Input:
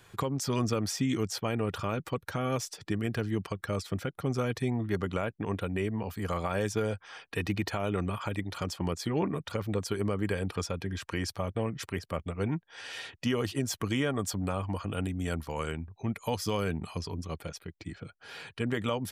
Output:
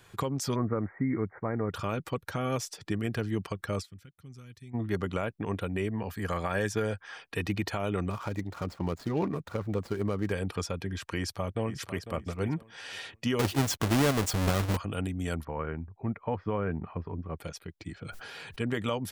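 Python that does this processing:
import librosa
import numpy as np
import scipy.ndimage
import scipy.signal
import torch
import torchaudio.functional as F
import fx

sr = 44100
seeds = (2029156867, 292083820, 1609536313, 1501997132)

y = fx.cheby1_lowpass(x, sr, hz=2200.0, order=10, at=(0.54, 1.73), fade=0.02)
y = fx.tone_stack(y, sr, knobs='6-0-2', at=(3.84, 4.73), fade=0.02)
y = fx.peak_eq(y, sr, hz=1700.0, db=8.0, octaves=0.25, at=(5.93, 7.15))
y = fx.median_filter(y, sr, points=15, at=(8.1, 10.32))
y = fx.echo_throw(y, sr, start_s=11.17, length_s=0.95, ms=500, feedback_pct=20, wet_db=-12.0)
y = fx.halfwave_hold(y, sr, at=(13.39, 14.77))
y = fx.lowpass(y, sr, hz=1900.0, slope=24, at=(15.43, 17.36), fade=0.02)
y = fx.sustainer(y, sr, db_per_s=21.0, at=(18.01, 18.59))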